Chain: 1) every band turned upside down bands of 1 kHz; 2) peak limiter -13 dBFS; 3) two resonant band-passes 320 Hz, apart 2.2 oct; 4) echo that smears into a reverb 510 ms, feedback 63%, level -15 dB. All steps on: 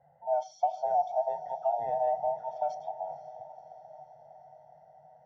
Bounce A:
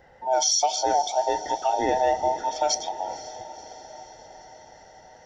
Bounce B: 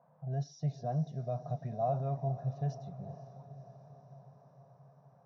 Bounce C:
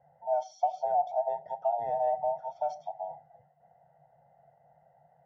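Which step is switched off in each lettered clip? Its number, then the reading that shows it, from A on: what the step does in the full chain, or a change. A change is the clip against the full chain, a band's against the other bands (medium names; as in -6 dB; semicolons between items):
3, loudness change +7.5 LU; 1, loudness change -5.0 LU; 4, echo-to-direct -13.0 dB to none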